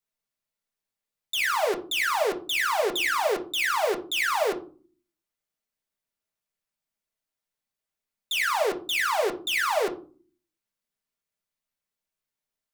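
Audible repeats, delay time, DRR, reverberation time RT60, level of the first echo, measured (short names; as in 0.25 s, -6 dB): none, none, 1.5 dB, 0.40 s, none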